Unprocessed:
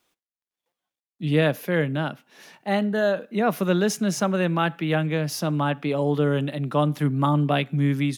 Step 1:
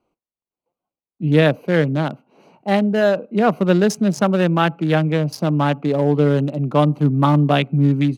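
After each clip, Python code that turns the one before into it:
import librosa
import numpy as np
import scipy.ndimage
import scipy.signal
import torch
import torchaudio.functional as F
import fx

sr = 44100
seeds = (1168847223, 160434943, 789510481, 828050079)

y = fx.wiener(x, sr, points=25)
y = y * 10.0 ** (6.5 / 20.0)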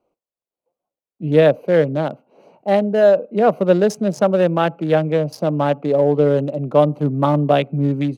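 y = fx.peak_eq(x, sr, hz=550.0, db=10.5, octaves=1.0)
y = y * 10.0 ** (-4.5 / 20.0)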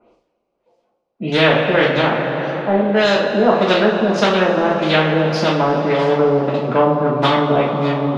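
y = fx.filter_lfo_lowpass(x, sr, shape='sine', hz=1.7, low_hz=400.0, high_hz=5500.0, q=1.6)
y = fx.rev_double_slope(y, sr, seeds[0], early_s=0.36, late_s=3.6, knee_db=-18, drr_db=-7.5)
y = fx.spectral_comp(y, sr, ratio=2.0)
y = y * 10.0 ** (-9.0 / 20.0)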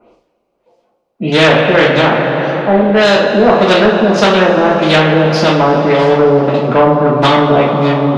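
y = fx.fold_sine(x, sr, drive_db=4, ceiling_db=-1.0)
y = y * 10.0 ** (-1.0 / 20.0)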